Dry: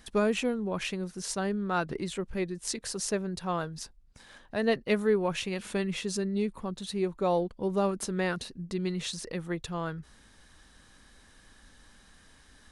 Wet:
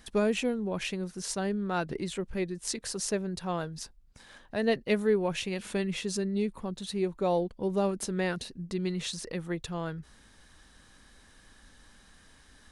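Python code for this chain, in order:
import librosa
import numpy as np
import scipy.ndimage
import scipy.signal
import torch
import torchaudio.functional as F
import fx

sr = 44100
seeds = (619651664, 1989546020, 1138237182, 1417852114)

y = fx.dynamic_eq(x, sr, hz=1200.0, q=2.2, threshold_db=-48.0, ratio=4.0, max_db=-5)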